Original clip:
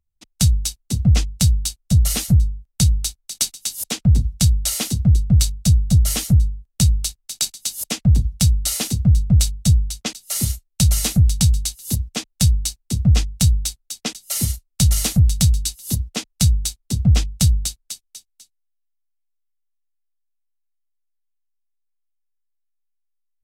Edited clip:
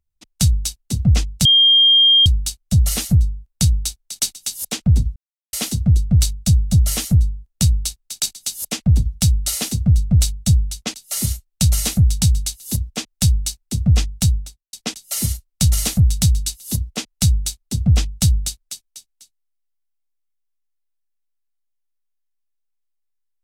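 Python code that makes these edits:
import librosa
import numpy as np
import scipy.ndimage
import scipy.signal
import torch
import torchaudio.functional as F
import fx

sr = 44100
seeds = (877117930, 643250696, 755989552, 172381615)

y = fx.studio_fade_out(x, sr, start_s=13.35, length_s=0.57)
y = fx.edit(y, sr, fx.insert_tone(at_s=1.45, length_s=0.81, hz=3210.0, db=-8.5),
    fx.silence(start_s=4.35, length_s=0.37), tone=tone)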